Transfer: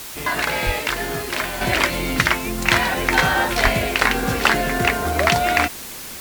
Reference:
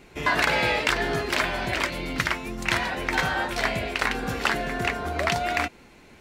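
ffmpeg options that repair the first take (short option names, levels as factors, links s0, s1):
-filter_complex "[0:a]asplit=3[s0][s1][s2];[s0]afade=t=out:st=0.65:d=0.02[s3];[s1]highpass=f=140:w=0.5412,highpass=f=140:w=1.3066,afade=t=in:st=0.65:d=0.02,afade=t=out:st=0.77:d=0.02[s4];[s2]afade=t=in:st=0.77:d=0.02[s5];[s3][s4][s5]amix=inputs=3:normalize=0,asplit=3[s6][s7][s8];[s6]afade=t=out:st=3.63:d=0.02[s9];[s7]highpass=f=140:w=0.5412,highpass=f=140:w=1.3066,afade=t=in:st=3.63:d=0.02,afade=t=out:st=3.75:d=0.02[s10];[s8]afade=t=in:st=3.75:d=0.02[s11];[s9][s10][s11]amix=inputs=3:normalize=0,afwtdn=0.02,asetnsamples=n=441:p=0,asendcmd='1.61 volume volume -7.5dB',volume=1"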